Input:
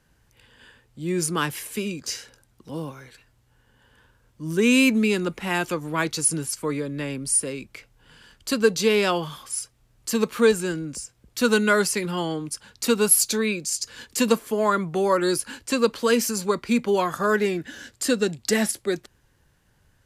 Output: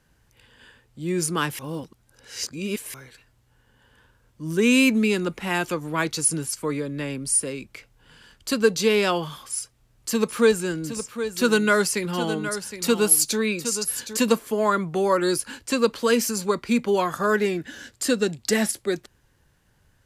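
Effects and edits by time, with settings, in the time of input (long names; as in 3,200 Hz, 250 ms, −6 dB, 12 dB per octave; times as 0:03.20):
0:01.59–0:02.94: reverse
0:09.52–0:14.17: single-tap delay 765 ms −10.5 dB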